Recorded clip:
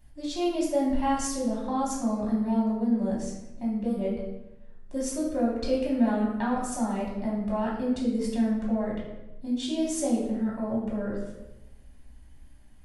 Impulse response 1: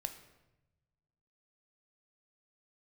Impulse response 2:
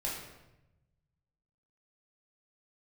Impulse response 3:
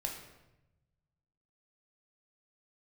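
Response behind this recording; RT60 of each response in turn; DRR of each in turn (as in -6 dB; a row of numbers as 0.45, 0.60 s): 2; 0.95, 0.95, 0.95 s; 7.0, -5.5, 0.5 dB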